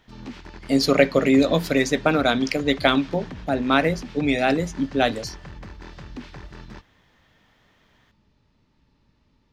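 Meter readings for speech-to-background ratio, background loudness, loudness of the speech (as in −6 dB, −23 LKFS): 19.5 dB, −40.5 LKFS, −21.0 LKFS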